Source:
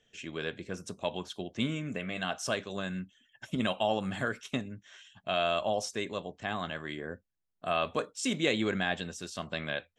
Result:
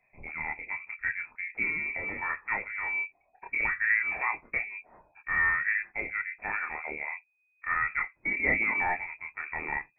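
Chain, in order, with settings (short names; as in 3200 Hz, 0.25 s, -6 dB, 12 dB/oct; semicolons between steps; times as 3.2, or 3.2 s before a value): chorus voices 4, 0.22 Hz, delay 27 ms, depth 1.3 ms; inverted band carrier 2500 Hz; gain +5 dB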